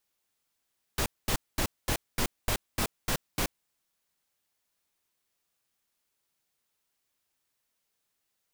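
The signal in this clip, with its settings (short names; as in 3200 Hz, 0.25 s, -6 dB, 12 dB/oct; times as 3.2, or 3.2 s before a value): noise bursts pink, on 0.08 s, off 0.22 s, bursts 9, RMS -27.5 dBFS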